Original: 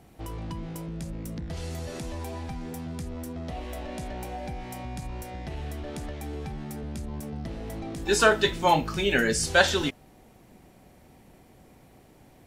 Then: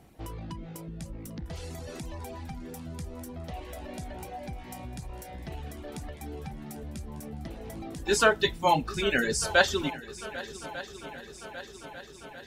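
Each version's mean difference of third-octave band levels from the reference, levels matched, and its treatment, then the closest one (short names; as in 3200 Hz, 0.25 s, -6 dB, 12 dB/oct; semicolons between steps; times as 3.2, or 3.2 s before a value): 4.5 dB: reverb removal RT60 1.2 s; on a send: multi-head echo 0.399 s, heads second and third, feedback 68%, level -17.5 dB; on the sum: gain -1.5 dB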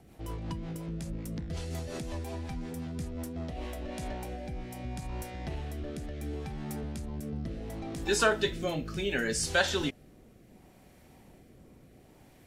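2.5 dB: compressor 1.5:1, threshold -30 dBFS, peak gain reduction 6.5 dB; rotary speaker horn 5.5 Hz, later 0.7 Hz, at 3.26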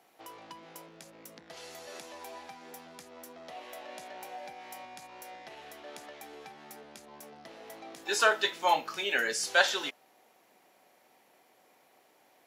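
6.0 dB: HPF 600 Hz 12 dB/oct; bell 8500 Hz -7 dB 0.23 oct; gain -3 dB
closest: second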